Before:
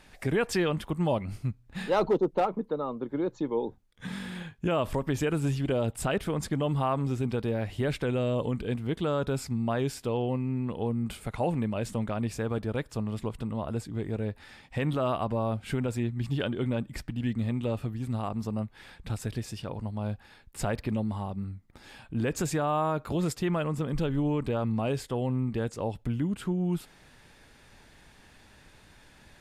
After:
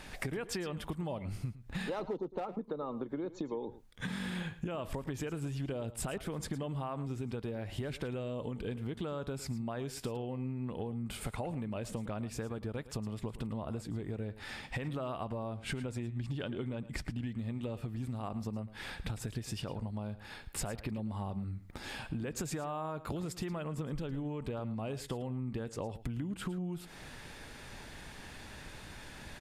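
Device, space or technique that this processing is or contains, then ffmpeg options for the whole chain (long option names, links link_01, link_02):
serial compression, peaks first: -filter_complex "[0:a]asettb=1/sr,asplit=3[link_01][link_02][link_03];[link_01]atrim=end=15.474[link_04];[link_02]atrim=start=15.47:end=17.27,asetpts=PTS-STARTPTS,afade=type=in:duration=0.004:curve=qsin,afade=type=out:start_time=1.796:duration=0.004:curve=qsin,lowpass=11000[link_05];[link_03]atrim=start=17.266[link_06];[link_04][link_05]acrossfade=duration=0.004:curve1=hsin:curve2=qsin[link_07];[link_07][link_06]acrossfade=duration=0.004:curve1=qsin:curve2=hsin,acompressor=threshold=-36dB:ratio=6,acompressor=threshold=-44dB:ratio=2.5,aecho=1:1:110:0.168,volume=7dB"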